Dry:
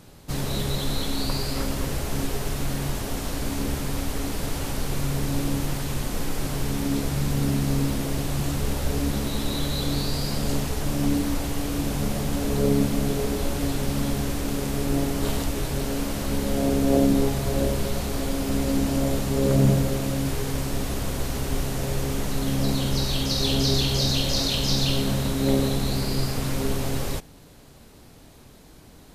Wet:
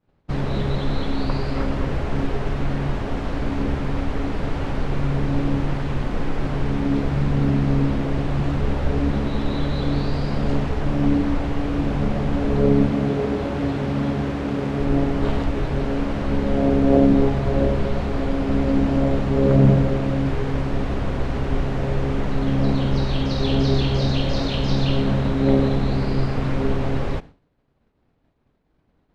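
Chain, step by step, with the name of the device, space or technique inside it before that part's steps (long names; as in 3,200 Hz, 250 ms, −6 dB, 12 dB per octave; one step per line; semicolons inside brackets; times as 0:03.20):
hearing-loss simulation (low-pass filter 2,200 Hz 12 dB per octave; downward expander −35 dBFS)
0:12.92–0:14.80: high-pass filter 79 Hz 12 dB per octave
level +4.5 dB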